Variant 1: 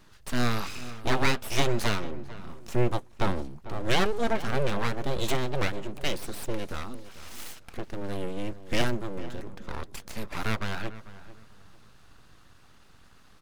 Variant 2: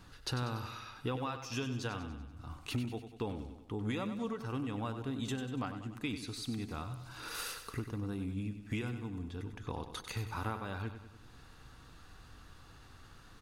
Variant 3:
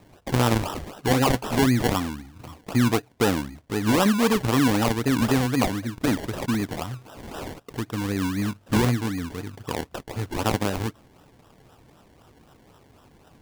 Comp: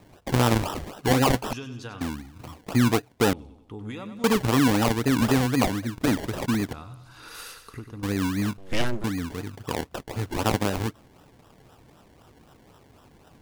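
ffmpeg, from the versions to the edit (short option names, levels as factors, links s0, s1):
-filter_complex "[1:a]asplit=3[s0][s1][s2];[2:a]asplit=5[s3][s4][s5][s6][s7];[s3]atrim=end=1.532[s8];[s0]atrim=start=1.528:end=2.012[s9];[s4]atrim=start=2.008:end=3.332[s10];[s1]atrim=start=3.328:end=4.242[s11];[s5]atrim=start=4.238:end=6.732[s12];[s2]atrim=start=6.728:end=8.032[s13];[s6]atrim=start=8.028:end=8.582[s14];[0:a]atrim=start=8.578:end=9.042[s15];[s7]atrim=start=9.038[s16];[s8][s9]acrossfade=d=0.004:c1=hsin:c2=hsin[s17];[s17][s10]acrossfade=d=0.004:c1=hsin:c2=hsin[s18];[s18][s11]acrossfade=d=0.004:c1=hsin:c2=hsin[s19];[s19][s12]acrossfade=d=0.004:c1=hsin:c2=hsin[s20];[s20][s13]acrossfade=d=0.004:c1=hsin:c2=hsin[s21];[s21][s14]acrossfade=d=0.004:c1=hsin:c2=hsin[s22];[s22][s15]acrossfade=d=0.004:c1=hsin:c2=hsin[s23];[s23][s16]acrossfade=d=0.004:c1=hsin:c2=hsin"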